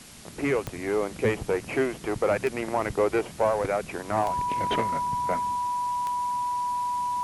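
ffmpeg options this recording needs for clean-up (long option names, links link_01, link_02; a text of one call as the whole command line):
ffmpeg -i in.wav -af "adeclick=threshold=4,bandreject=frequency=980:width=30,afftdn=noise_reduction=30:noise_floor=-41" out.wav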